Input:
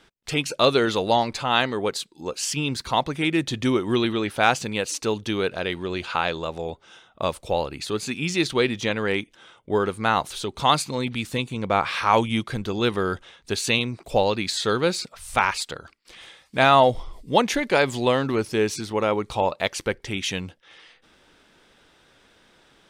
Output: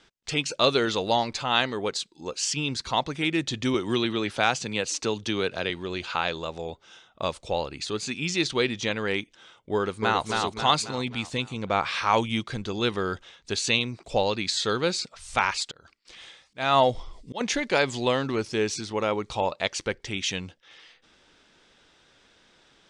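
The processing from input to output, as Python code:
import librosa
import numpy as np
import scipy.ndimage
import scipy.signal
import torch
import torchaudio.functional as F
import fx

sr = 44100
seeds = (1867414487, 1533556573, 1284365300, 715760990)

y = fx.band_squash(x, sr, depth_pct=40, at=(3.74, 5.7))
y = fx.echo_throw(y, sr, start_s=9.75, length_s=0.51, ms=270, feedback_pct=50, wet_db=-3.5)
y = fx.auto_swell(y, sr, attack_ms=252.0, at=(15.63, 17.41))
y = scipy.signal.sosfilt(scipy.signal.butter(4, 7500.0, 'lowpass', fs=sr, output='sos'), y)
y = fx.high_shelf(y, sr, hz=3600.0, db=7.0)
y = y * librosa.db_to_amplitude(-4.0)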